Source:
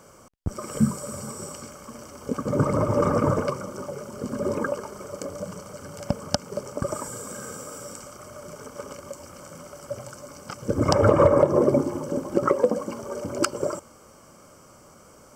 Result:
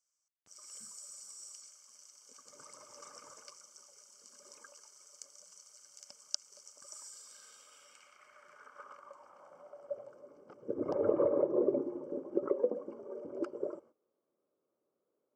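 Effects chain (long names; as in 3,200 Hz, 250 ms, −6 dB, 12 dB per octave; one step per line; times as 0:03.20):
low-shelf EQ 260 Hz −7 dB
noise gate −46 dBFS, range −18 dB
band-pass filter sweep 6,200 Hz → 390 Hz, 0:06.90–0:10.38
level −5 dB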